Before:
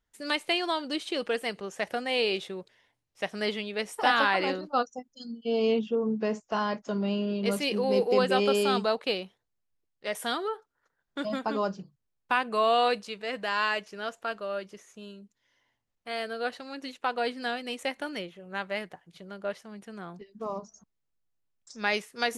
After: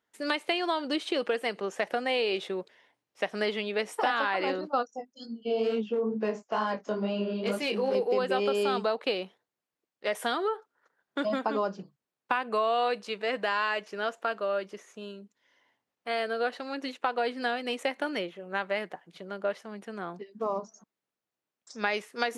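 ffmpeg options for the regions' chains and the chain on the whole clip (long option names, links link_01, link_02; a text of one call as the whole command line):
ffmpeg -i in.wav -filter_complex "[0:a]asettb=1/sr,asplit=3[link_01][link_02][link_03];[link_01]atrim=end=4.874[link_04];[link_02]atrim=start=4.87:end=7.95,asetpts=PTS-STARTPTS,afade=type=in:duration=0.004:curve=qsin,afade=type=out:start_time=3.076:duration=0.004:curve=qsin,asoftclip=type=hard:threshold=-20dB,flanger=delay=18:depth=5.7:speed=2.2[link_05];[link_03]atrim=start=7.946[link_06];[link_04][link_05]acrossfade=duration=0.004:curve1=hsin:curve2=qsin[link_07];[link_07][link_06]acrossfade=duration=0.004:curve1=qsin:curve2=hsin,highpass=250,highshelf=frequency=3900:gain=-9,acompressor=threshold=-31dB:ratio=4,volume=6dB" out.wav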